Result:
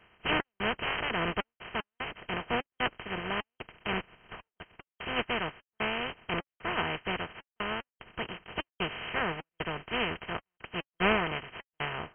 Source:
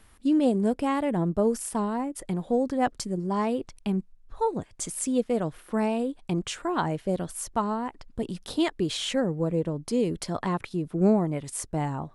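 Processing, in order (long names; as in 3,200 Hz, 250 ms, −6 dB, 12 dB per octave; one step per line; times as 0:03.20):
compressing power law on the bin magnitudes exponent 0.18
gate pattern "xx.xxxx.x.xxx.x" 75 BPM −60 dB
linear-phase brick-wall low-pass 3,200 Hz
notch comb filter 280 Hz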